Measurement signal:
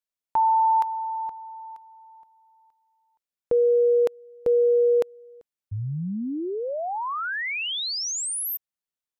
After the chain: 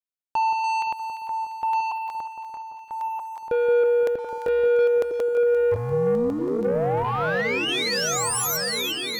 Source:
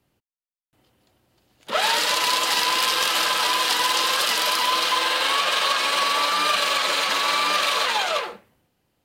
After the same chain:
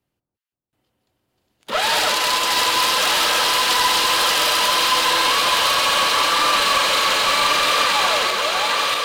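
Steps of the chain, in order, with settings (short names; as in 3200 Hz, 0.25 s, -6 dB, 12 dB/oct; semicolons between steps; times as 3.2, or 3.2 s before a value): regenerating reverse delay 0.639 s, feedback 66%, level -3 dB; sample leveller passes 2; echo with dull and thin repeats by turns 0.173 s, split 1300 Hz, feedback 70%, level -7.5 dB; gain -4.5 dB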